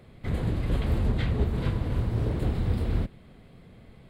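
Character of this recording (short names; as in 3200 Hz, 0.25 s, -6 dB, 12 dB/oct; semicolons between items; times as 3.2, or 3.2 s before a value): noise floor -52 dBFS; spectral tilt -7.5 dB/oct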